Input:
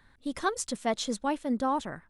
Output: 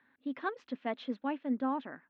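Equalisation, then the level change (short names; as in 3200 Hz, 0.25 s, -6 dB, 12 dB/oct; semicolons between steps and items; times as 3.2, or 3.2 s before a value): air absorption 86 m; speaker cabinet 260–3300 Hz, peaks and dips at 260 Hz +10 dB, 1700 Hz +4 dB, 2600 Hz +4 dB; -7.0 dB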